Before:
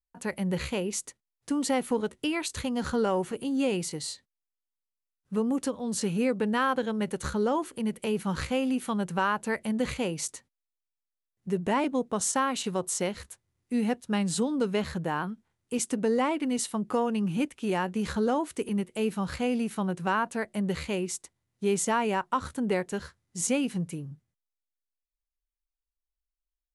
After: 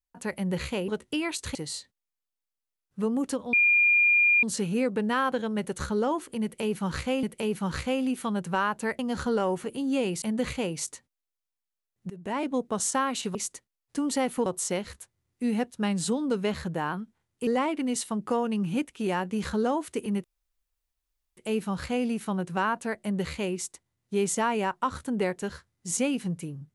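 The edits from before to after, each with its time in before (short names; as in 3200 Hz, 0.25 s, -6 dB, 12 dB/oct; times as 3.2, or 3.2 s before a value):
0.88–1.99 move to 12.76
2.66–3.89 move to 9.63
5.87 add tone 2410 Hz -17.5 dBFS 0.90 s
7.87–8.67 loop, 2 plays
11.51–11.95 fade in, from -20.5 dB
15.77–16.1 cut
18.87 insert room tone 1.13 s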